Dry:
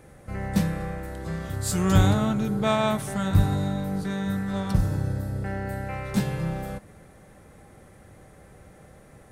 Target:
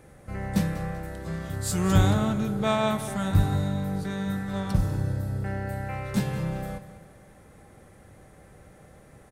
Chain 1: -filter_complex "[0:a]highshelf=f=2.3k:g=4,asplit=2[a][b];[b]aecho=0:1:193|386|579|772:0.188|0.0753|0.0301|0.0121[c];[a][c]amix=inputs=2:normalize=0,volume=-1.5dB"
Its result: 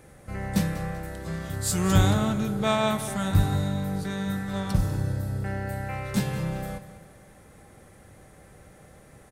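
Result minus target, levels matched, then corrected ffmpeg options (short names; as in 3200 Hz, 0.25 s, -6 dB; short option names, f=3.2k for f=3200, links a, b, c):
4000 Hz band +2.5 dB
-filter_complex "[0:a]asplit=2[a][b];[b]aecho=0:1:193|386|579|772:0.188|0.0753|0.0301|0.0121[c];[a][c]amix=inputs=2:normalize=0,volume=-1.5dB"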